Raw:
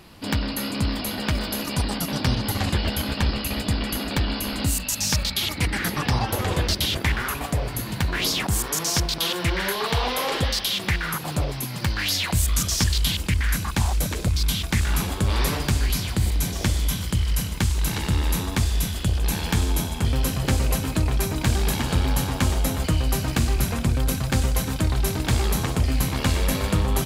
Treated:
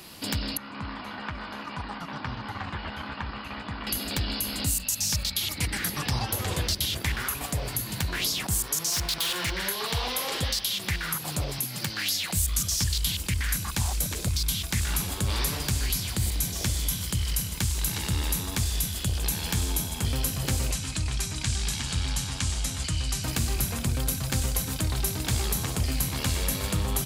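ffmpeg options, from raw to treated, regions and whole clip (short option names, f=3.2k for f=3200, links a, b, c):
-filter_complex "[0:a]asettb=1/sr,asplit=3[a][b][c];[a]atrim=end=0.574[d];[b]atrim=start=0.57:end=3.87,asetpts=PTS-STARTPTS,afade=t=in:d=0.004:c=qsin,afade=t=out:st=3.296:d=0.004:c=qsin,lowpass=1.4k,lowshelf=f=750:t=q:w=1.5:g=-8.5[e];[c]atrim=start=3.866[f];[d][e]acrossfade=d=0.004:c1=hsin:c2=qsin[g];[g][f]acrossfade=d=0.004:c1=qsin:c2=hsin,asettb=1/sr,asplit=3[h][i][j];[h]atrim=end=8.924[k];[i]atrim=start=8.92:end=9.51,asetpts=PTS-STARTPTS,afade=t=in:d=0.004:c=qsin,afade=t=out:st=0.586:d=0.004:c=qsin,equalizer=f=1.7k:w=0.47:g=9.5,asoftclip=type=hard:threshold=-19.5dB[l];[j]atrim=start=9.506[m];[k][l]acrossfade=d=0.004:c1=hsin:c2=qsin[n];[n][m]acrossfade=d=0.004:c1=qsin:c2=hsin,asettb=1/sr,asplit=3[o][p][q];[o]atrim=end=11.584[r];[p]atrim=start=11.58:end=12.37,asetpts=PTS-STARTPTS,afade=t=in:d=0.004:c=qsin,afade=t=out:st=0.786:d=0.004:c=qsin,highpass=f=120:w=0.5412,highpass=f=120:w=1.3066,bandreject=f=1k:w=12[s];[q]atrim=start=12.366[t];[r][s]acrossfade=d=0.004:c1=hsin:c2=qsin[u];[u][t]acrossfade=d=0.004:c1=qsin:c2=hsin,asettb=1/sr,asplit=3[v][w][x];[v]atrim=end=20.714[y];[w]atrim=start=20.71:end=23.24,asetpts=PTS-STARTPTS,afade=t=in:d=0.004:c=qsin,afade=t=out:st=2.526:d=0.004:c=qsin,lowpass=f=8.9k:w=0.5412,lowpass=f=8.9k:w=1.3066,equalizer=f=480:w=0.53:g=-11[z];[x]atrim=start=23.236[aa];[y][z]acrossfade=d=0.004:c1=hsin:c2=qsin[ab];[ab][aa]acrossfade=d=0.004:c1=qsin:c2=hsin,highshelf=f=3.7k:g=11.5,acrossover=split=140[ac][ad];[ad]acompressor=threshold=-34dB:ratio=2[ae];[ac][ae]amix=inputs=2:normalize=0,lowshelf=f=74:g=-10.5"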